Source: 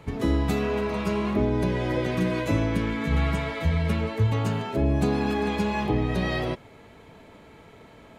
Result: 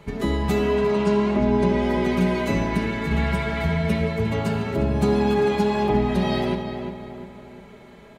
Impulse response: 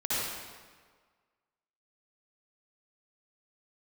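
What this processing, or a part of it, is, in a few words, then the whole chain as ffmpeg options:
keyed gated reverb: -filter_complex "[0:a]asettb=1/sr,asplit=3[a][b][c];[a]atrim=end=0.744[d];[b]atrim=start=0.74:end=1.82,asetpts=PTS-STARTPTS,afade=t=in:d=0.004:c=qsin,afade=t=out:st=1.076:d=0.004:c=qsin,lowpass=f=9k:w=0.5412,lowpass=f=9k:w=1.3066[e];[c]atrim=start=1.816[f];[d][e]acrossfade=d=0.004:c1=hsin:c2=qsin[g];[g][f]acrossfade=d=0.004:c1=qsin:c2=hsin,asplit=3[h][i][j];[1:a]atrim=start_sample=2205[k];[i][k]afir=irnorm=-1:irlink=0[l];[j]apad=whole_len=361058[m];[l][m]sidechaingate=range=-33dB:threshold=-36dB:ratio=16:detection=peak,volume=-18.5dB[n];[h][n]amix=inputs=2:normalize=0,aecho=1:1:5:0.63,asplit=2[o][p];[p]adelay=352,lowpass=f=2.4k:p=1,volume=-7dB,asplit=2[q][r];[r]adelay=352,lowpass=f=2.4k:p=1,volume=0.47,asplit=2[s][t];[t]adelay=352,lowpass=f=2.4k:p=1,volume=0.47,asplit=2[u][v];[v]adelay=352,lowpass=f=2.4k:p=1,volume=0.47,asplit=2[w][x];[x]adelay=352,lowpass=f=2.4k:p=1,volume=0.47,asplit=2[y][z];[z]adelay=352,lowpass=f=2.4k:p=1,volume=0.47[aa];[o][q][s][u][w][y][aa]amix=inputs=7:normalize=0"

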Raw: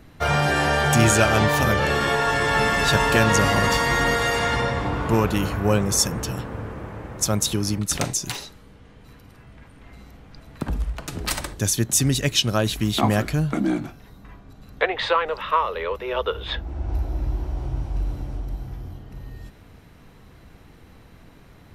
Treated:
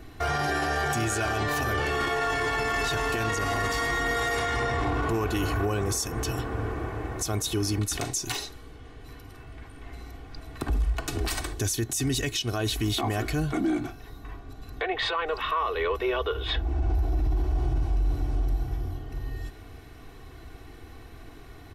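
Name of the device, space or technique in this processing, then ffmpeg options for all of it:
stacked limiters: -af "aecho=1:1:2.7:0.69,alimiter=limit=-8.5dB:level=0:latency=1:release=175,alimiter=limit=-14.5dB:level=0:latency=1:release=395,alimiter=limit=-20dB:level=0:latency=1:release=11,volume=1dB"

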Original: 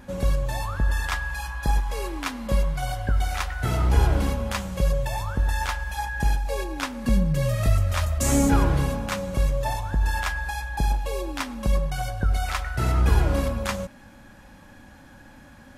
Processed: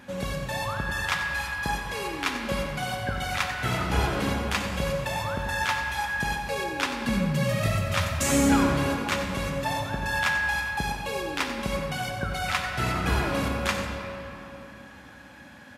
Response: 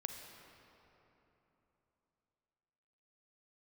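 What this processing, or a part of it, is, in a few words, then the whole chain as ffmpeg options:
PA in a hall: -filter_complex "[0:a]highpass=110,equalizer=f=2.6k:t=o:w=2:g=7,aecho=1:1:91:0.282[a];[1:a]atrim=start_sample=2205[b];[a][b]afir=irnorm=-1:irlink=0"

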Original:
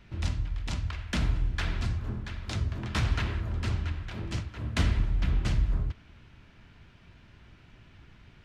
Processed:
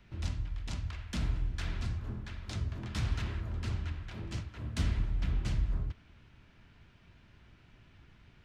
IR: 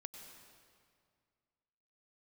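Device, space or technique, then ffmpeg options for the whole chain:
one-band saturation: -filter_complex "[0:a]acrossover=split=300|3600[a][b][c];[b]asoftclip=type=tanh:threshold=-36.5dB[d];[a][d][c]amix=inputs=3:normalize=0,volume=-5dB"

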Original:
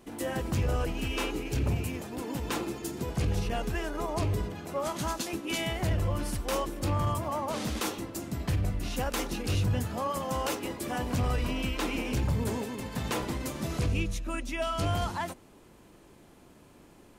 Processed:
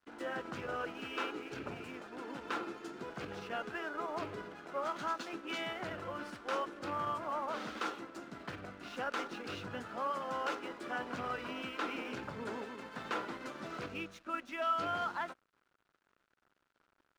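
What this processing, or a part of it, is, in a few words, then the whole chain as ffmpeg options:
pocket radio on a weak battery: -af "highpass=280,lowpass=3.9k,aeval=exprs='sgn(val(0))*max(abs(val(0))-0.002,0)':c=same,equalizer=f=1.4k:t=o:w=0.44:g=11,volume=-6dB"

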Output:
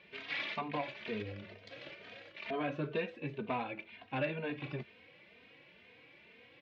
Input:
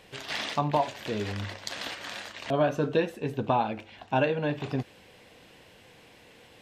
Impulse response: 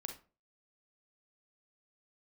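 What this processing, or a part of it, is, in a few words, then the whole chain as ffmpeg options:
barber-pole flanger into a guitar amplifier: -filter_complex "[0:a]asplit=2[a][b];[b]adelay=3,afreqshift=2.1[c];[a][c]amix=inputs=2:normalize=1,asoftclip=type=tanh:threshold=-21.5dB,highpass=85,equalizer=f=110:t=q:w=4:g=-6,equalizer=f=800:t=q:w=4:g=-6,equalizer=f=2.3k:t=q:w=4:g=10,lowpass=f=4k:w=0.5412,lowpass=f=4k:w=1.3066,asplit=3[d][e][f];[d]afade=t=out:st=1.21:d=0.02[g];[e]equalizer=f=125:t=o:w=1:g=5,equalizer=f=250:t=o:w=1:g=-5,equalizer=f=500:t=o:w=1:g=6,equalizer=f=1k:t=o:w=1:g=-10,equalizer=f=2k:t=o:w=1:g=-7,equalizer=f=4k:t=o:w=1:g=-6,equalizer=f=8k:t=o:w=1:g=-5,afade=t=in:st=1.21:d=0.02,afade=t=out:st=2.36:d=0.02[h];[f]afade=t=in:st=2.36:d=0.02[i];[g][h][i]amix=inputs=3:normalize=0,volume=-4.5dB"

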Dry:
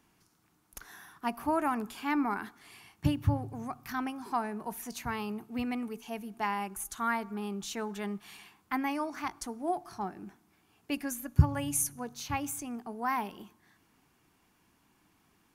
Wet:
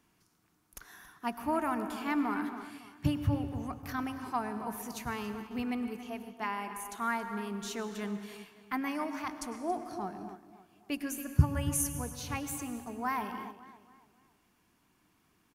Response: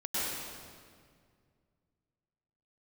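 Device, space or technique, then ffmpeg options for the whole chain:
keyed gated reverb: -filter_complex "[0:a]bandreject=f=830:w=14,asettb=1/sr,asplit=3[a][b][c];[a]atrim=end=5.974[d];[b]atrim=start=5.97:end=6.98,asetpts=PTS-STARTPTS,afade=t=in:d=0.004:c=qsin,afade=t=out:st=1.006:d=0.004:c=qsin,bass=f=250:g=-7,treble=f=4k:g=-4[e];[c]atrim=start=6.976[f];[d][e]acrossfade=d=0.004:c1=hsin:c2=qsin[g];[g][f]acrossfade=d=0.004:c1=qsin:c2=hsin,asplit=2[h][i];[i]adelay=278,lowpass=f=3.8k:p=1,volume=-12.5dB,asplit=2[j][k];[k]adelay=278,lowpass=f=3.8k:p=1,volume=0.4,asplit=2[l][m];[m]adelay=278,lowpass=f=3.8k:p=1,volume=0.4,asplit=2[n][o];[o]adelay=278,lowpass=f=3.8k:p=1,volume=0.4[p];[h][j][l][n][p]amix=inputs=5:normalize=0,asplit=3[q][r][s];[1:a]atrim=start_sample=2205[t];[r][t]afir=irnorm=-1:irlink=0[u];[s]apad=whole_len=705507[v];[u][v]sidechaingate=range=-10dB:threshold=-45dB:ratio=16:detection=peak,volume=-16dB[w];[q][w]amix=inputs=2:normalize=0,volume=-2.5dB"

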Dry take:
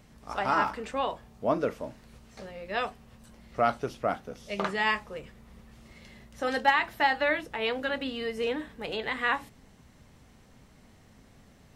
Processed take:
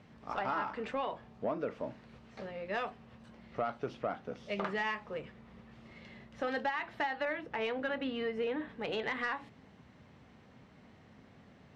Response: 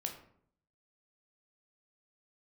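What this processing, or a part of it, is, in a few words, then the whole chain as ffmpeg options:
AM radio: -filter_complex "[0:a]highpass=100,lowpass=3.3k,acompressor=threshold=-30dB:ratio=6,asoftclip=type=tanh:threshold=-23dB,asettb=1/sr,asplit=3[a][b][c];[a]atrim=end=7.254[d];[b]atrim=start=7.25:end=8.69,asetpts=PTS-STARTPTS,afade=t=in:d=0.004:c=qsin,afade=t=out:st=1.436:d=0.004:c=qsin,adynamicequalizer=threshold=0.00251:dfrequency=3100:dqfactor=0.7:tfrequency=3100:tqfactor=0.7:attack=5:release=100:ratio=0.375:range=3.5:mode=cutabove:tftype=highshelf[e];[c]atrim=start=8.686[f];[d][e]acrossfade=d=0.004:c1=hsin:c2=qsin[g];[g][f]acrossfade=d=0.004:c1=qsin:c2=hsin"

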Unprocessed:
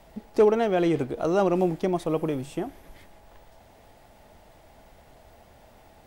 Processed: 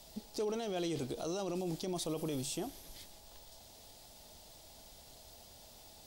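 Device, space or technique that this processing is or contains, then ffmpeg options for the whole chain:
over-bright horn tweeter: -af "highshelf=f=2.9k:t=q:w=1.5:g=14,alimiter=limit=-23dB:level=0:latency=1:release=24,volume=-6.5dB"

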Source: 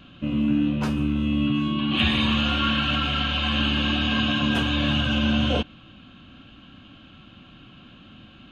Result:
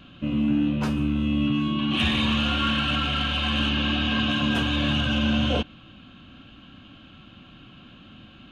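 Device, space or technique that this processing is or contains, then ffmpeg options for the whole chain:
saturation between pre-emphasis and de-emphasis: -filter_complex "[0:a]highshelf=f=2.8k:g=11.5,asoftclip=type=tanh:threshold=-11dB,highshelf=f=2.8k:g=-11.5,asettb=1/sr,asplit=3[a][b][c];[a]atrim=end=3.694[d];[b]atrim=start=3.69:end=4.29,asetpts=PTS-STARTPTS,afade=t=in:d=0.004:c=qsin,afade=t=out:st=0.596:d=0.004:c=qsin,lowpass=5.9k[e];[c]atrim=start=4.286[f];[d][e]acrossfade=d=0.004:c1=hsin:c2=qsin[g];[g][f]acrossfade=d=0.004:c1=qsin:c2=hsin"

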